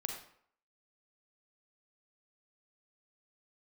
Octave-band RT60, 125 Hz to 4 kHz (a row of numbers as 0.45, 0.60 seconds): 0.50, 0.55, 0.60, 0.65, 0.55, 0.45 seconds